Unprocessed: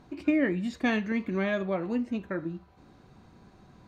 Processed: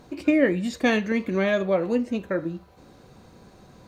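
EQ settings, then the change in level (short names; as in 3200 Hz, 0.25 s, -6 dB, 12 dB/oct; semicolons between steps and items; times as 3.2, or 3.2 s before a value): bell 510 Hz +8.5 dB 0.47 oct; high shelf 4800 Hz +11 dB; +3.5 dB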